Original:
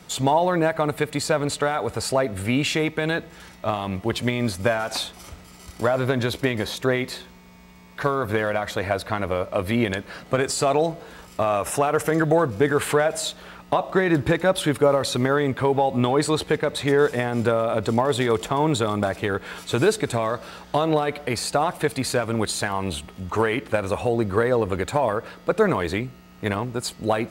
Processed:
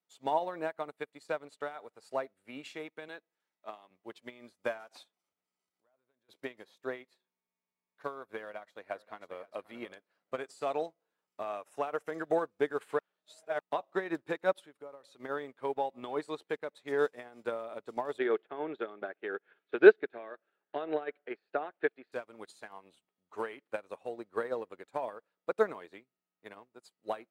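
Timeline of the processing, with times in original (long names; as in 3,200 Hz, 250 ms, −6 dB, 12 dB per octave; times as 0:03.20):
0:03.08–0:03.91: Bessel high-pass filter 220 Hz
0:05.16–0:06.29: downward compressor 2.5 to 1, threshold −41 dBFS
0:08.42–0:09.40: delay throw 530 ms, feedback 25%, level −9.5 dB
0:12.99–0:13.59: reverse
0:14.59–0:15.20: downward compressor 2.5 to 1, threshold −25 dBFS
0:18.18–0:22.12: loudspeaker in its box 200–3,200 Hz, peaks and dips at 380 Hz +8 dB, 1,000 Hz −7 dB, 1,600 Hz +7 dB
whole clip: high-pass filter 300 Hz 12 dB per octave; high-shelf EQ 5,000 Hz −4 dB; expander for the loud parts 2.5 to 1, over −39 dBFS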